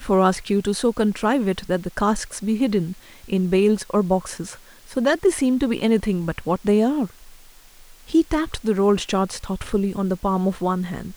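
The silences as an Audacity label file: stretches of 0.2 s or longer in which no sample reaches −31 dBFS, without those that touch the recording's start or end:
2.930000	3.300000	silence
4.540000	4.910000	silence
7.100000	8.090000	silence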